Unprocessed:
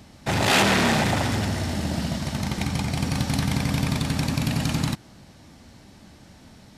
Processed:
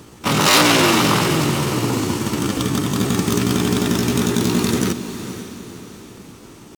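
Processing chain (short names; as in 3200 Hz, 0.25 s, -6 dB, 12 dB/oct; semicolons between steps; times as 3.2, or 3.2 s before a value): pitch shift +7 st; diffused feedback echo 0.501 s, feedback 44%, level -11 dB; gain +6 dB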